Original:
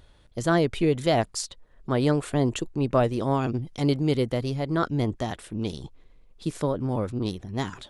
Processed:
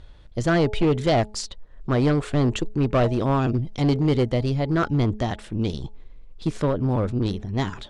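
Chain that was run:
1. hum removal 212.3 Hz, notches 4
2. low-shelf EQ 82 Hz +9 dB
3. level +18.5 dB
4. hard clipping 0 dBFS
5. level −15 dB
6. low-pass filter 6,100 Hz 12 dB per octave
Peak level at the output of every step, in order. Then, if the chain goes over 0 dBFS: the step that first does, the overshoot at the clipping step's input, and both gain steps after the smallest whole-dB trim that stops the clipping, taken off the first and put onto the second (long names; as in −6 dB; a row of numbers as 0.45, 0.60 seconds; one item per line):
−10.0, −9.0, +9.5, 0.0, −15.0, −14.5 dBFS
step 3, 9.5 dB
step 3 +8.5 dB, step 5 −5 dB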